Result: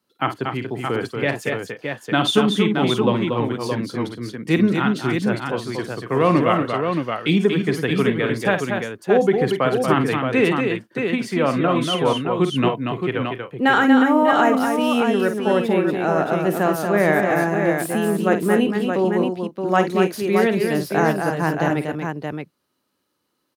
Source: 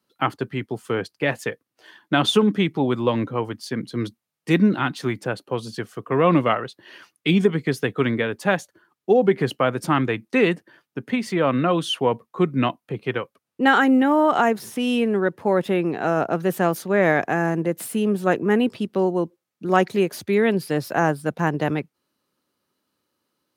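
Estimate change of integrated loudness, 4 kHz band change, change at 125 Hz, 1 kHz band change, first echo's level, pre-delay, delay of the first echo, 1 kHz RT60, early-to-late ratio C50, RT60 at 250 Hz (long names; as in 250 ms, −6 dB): +2.0 dB, +2.5 dB, +2.0 dB, +2.5 dB, −9.5 dB, no reverb audible, 50 ms, no reverb audible, no reverb audible, no reverb audible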